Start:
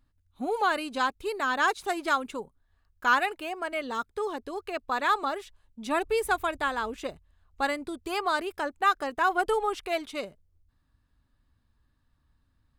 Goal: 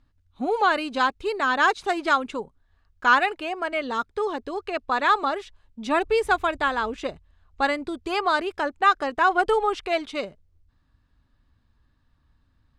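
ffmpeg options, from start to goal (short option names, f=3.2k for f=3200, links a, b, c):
-af "lowpass=5.9k,volume=5dB"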